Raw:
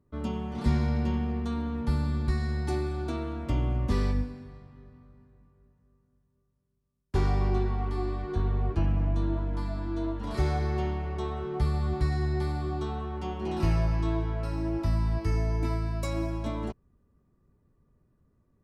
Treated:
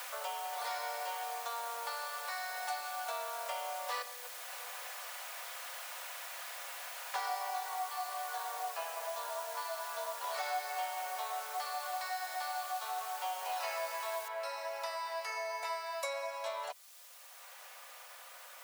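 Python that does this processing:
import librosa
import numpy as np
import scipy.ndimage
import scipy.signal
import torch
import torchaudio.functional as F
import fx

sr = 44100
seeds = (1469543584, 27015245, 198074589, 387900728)

y = fx.level_steps(x, sr, step_db=18, at=(4.02, 4.75))
y = fx.noise_floor_step(y, sr, seeds[0], at_s=14.28, before_db=-50, after_db=-67, tilt_db=0.0)
y = scipy.signal.sosfilt(scipy.signal.butter(12, 540.0, 'highpass', fs=sr, output='sos'), y)
y = y + 0.38 * np.pad(y, (int(4.1 * sr / 1000.0), 0))[:len(y)]
y = fx.band_squash(y, sr, depth_pct=70)
y = F.gain(torch.from_numpy(y), 1.0).numpy()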